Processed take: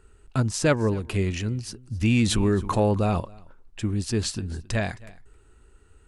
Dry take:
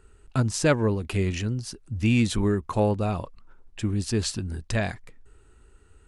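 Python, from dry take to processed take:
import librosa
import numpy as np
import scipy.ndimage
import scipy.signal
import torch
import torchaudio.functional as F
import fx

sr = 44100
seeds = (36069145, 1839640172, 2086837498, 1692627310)

y = x + 10.0 ** (-22.0 / 20.0) * np.pad(x, (int(267 * sr / 1000.0), 0))[:len(x)]
y = fx.env_flatten(y, sr, amount_pct=50, at=(2.01, 3.2))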